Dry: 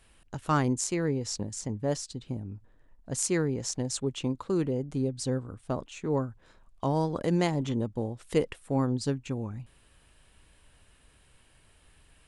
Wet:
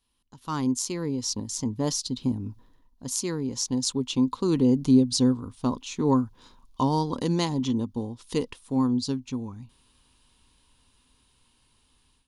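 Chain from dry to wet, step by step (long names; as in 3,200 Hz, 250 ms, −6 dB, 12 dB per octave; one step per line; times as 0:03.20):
source passing by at 0:04.11, 8 m/s, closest 8.9 metres
high shelf with overshoot 2,900 Hz +8 dB, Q 1.5
automatic gain control gain up to 16.5 dB
thirty-one-band graphic EQ 250 Hz +10 dB, 630 Hz −8 dB, 1,000 Hz +10 dB, 1,600 Hz −3 dB, 8,000 Hz −9 dB
level −6.5 dB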